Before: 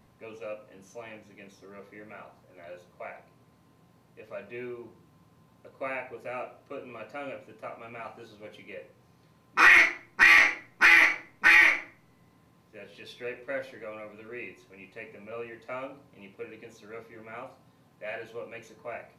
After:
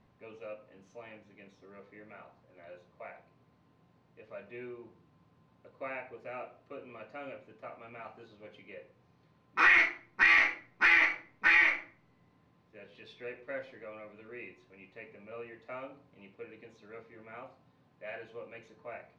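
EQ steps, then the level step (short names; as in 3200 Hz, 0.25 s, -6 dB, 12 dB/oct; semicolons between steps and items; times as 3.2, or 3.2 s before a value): LPF 4100 Hz 12 dB/oct; -5.5 dB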